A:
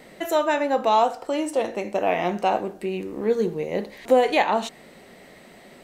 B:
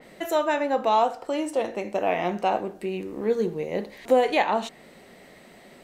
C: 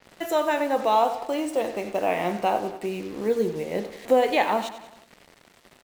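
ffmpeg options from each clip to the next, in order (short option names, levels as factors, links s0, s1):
-af "adynamicequalizer=threshold=0.00891:dfrequency=4100:dqfactor=0.7:tfrequency=4100:tqfactor=0.7:attack=5:release=100:ratio=0.375:range=2:mode=cutabove:tftype=highshelf,volume=0.794"
-af "acrusher=bits=6:mix=0:aa=0.5,aecho=1:1:94|188|282|376|470:0.224|0.119|0.0629|0.0333|0.0177"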